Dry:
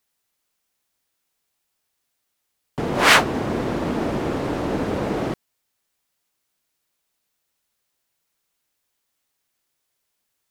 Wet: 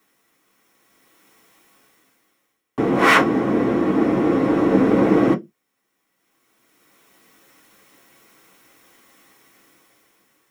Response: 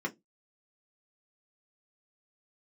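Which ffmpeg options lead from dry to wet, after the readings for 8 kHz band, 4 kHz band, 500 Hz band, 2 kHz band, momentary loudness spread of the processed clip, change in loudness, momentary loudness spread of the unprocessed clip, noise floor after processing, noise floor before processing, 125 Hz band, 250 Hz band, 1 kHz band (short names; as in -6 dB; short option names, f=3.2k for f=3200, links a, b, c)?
n/a, -6.5 dB, +5.0 dB, 0.0 dB, 8 LU, +3.5 dB, 15 LU, -74 dBFS, -76 dBFS, +2.0 dB, +8.5 dB, +2.0 dB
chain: -filter_complex "[0:a]asplit=2[a][b];[b]acontrast=85,volume=3dB[c];[a][c]amix=inputs=2:normalize=0[d];[1:a]atrim=start_sample=2205[e];[d][e]afir=irnorm=-1:irlink=0,dynaudnorm=f=440:g=5:m=11dB,volume=-1dB"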